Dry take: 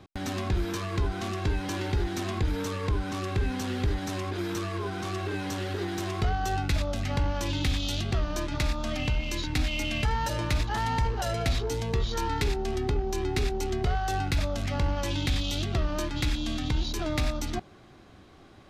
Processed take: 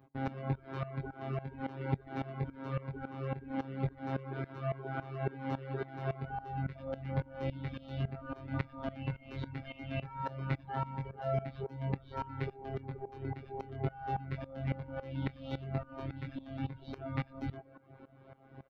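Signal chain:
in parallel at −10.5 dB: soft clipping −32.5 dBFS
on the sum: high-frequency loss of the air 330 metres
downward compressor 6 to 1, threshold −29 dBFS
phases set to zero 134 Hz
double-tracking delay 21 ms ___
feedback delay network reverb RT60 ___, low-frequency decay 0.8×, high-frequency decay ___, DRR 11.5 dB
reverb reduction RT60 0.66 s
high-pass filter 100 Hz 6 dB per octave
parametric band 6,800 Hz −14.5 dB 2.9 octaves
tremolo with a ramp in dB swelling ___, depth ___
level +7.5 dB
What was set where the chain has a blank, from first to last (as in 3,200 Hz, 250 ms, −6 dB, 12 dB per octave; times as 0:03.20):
−3.5 dB, 2.5 s, 0.4×, 3.6 Hz, 18 dB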